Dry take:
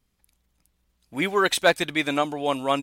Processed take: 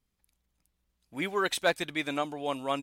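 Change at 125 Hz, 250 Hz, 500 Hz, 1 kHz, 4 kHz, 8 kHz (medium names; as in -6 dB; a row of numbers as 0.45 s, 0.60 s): -7.5 dB, -7.5 dB, -7.5 dB, -7.5 dB, -7.5 dB, -7.5 dB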